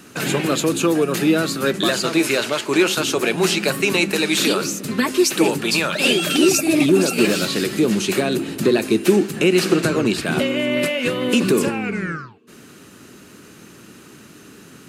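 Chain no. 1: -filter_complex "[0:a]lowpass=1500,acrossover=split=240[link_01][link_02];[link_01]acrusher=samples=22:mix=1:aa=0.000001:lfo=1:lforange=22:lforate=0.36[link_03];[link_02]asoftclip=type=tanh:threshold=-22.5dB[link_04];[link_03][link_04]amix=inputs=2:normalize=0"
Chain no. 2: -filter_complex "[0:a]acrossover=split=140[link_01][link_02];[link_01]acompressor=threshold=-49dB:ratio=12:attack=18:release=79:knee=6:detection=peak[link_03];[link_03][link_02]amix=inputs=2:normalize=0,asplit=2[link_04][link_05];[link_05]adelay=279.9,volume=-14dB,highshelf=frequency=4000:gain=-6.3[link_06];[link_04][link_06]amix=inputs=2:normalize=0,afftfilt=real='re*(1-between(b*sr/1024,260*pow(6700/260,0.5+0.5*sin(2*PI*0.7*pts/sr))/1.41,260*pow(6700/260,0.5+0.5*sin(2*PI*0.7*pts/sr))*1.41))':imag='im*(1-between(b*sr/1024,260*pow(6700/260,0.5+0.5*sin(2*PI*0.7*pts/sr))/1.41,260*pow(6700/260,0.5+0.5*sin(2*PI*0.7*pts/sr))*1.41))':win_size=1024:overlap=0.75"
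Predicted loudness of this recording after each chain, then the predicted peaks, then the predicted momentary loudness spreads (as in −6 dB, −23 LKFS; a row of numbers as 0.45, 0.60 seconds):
−24.0, −19.5 LKFS; −11.0, −3.5 dBFS; 4, 5 LU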